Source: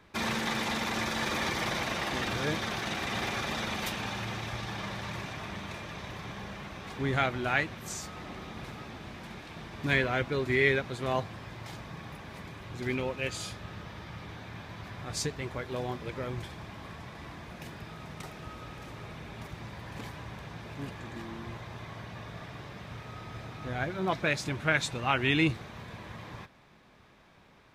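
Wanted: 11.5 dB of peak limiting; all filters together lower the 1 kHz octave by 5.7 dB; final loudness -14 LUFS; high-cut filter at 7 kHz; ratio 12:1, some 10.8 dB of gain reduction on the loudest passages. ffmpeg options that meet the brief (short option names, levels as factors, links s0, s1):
-af "lowpass=7000,equalizer=f=1000:t=o:g=-8,acompressor=threshold=0.0251:ratio=12,volume=26.6,alimiter=limit=0.708:level=0:latency=1"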